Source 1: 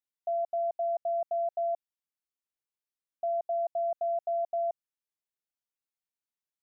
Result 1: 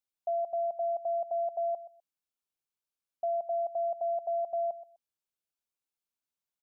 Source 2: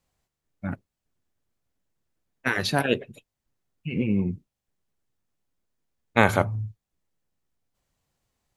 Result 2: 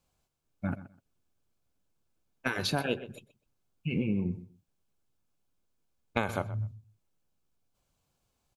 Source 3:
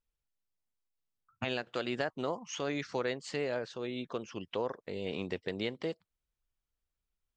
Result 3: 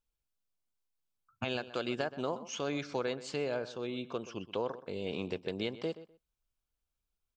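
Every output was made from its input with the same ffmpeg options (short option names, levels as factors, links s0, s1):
-filter_complex "[0:a]acompressor=threshold=0.0501:ratio=6,bandreject=f=1900:w=5.2,asplit=2[s0][s1];[s1]adelay=126,lowpass=f=3300:p=1,volume=0.178,asplit=2[s2][s3];[s3]adelay=126,lowpass=f=3300:p=1,volume=0.19[s4];[s0][s2][s4]amix=inputs=3:normalize=0"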